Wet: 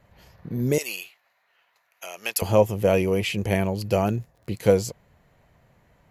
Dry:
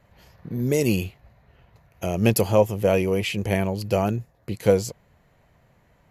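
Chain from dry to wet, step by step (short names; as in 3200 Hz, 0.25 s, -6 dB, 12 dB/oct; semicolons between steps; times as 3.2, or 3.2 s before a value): 0.78–2.42 HPF 1200 Hz 12 dB/oct; 4.03–4.57 crackle 48/s -44 dBFS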